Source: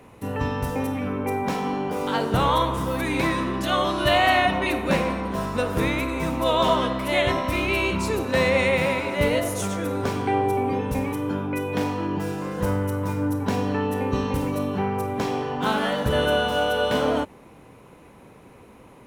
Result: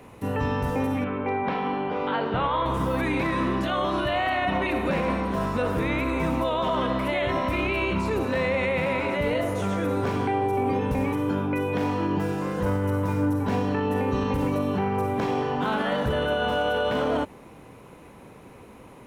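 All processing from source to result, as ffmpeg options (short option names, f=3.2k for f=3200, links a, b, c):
-filter_complex "[0:a]asettb=1/sr,asplit=3[a][b][c];[a]atrim=end=1.044[d];[b]atrim=start=1.04:end=2.66,asetpts=PTS-STARTPTS,afade=t=in:d=0.004:c=qsin,afade=t=out:st=1.616:d=0.004:c=qsin,lowpass=f=3.5k:w=0.5412,lowpass=f=3.5k:w=1.3066,lowshelf=f=370:g=-6[e];[c]atrim=start=2.656[f];[d][e]acrossfade=d=0.004:c1=hsin:c2=qsin[g];[g][f]acrossfade=d=0.004:c1=qsin:c2=hsin,alimiter=limit=-18dB:level=0:latency=1:release=22,acrossover=split=3200[h][i];[i]acompressor=threshold=-50dB:ratio=4:attack=1:release=60[j];[h][j]amix=inputs=2:normalize=0,volume=1.5dB"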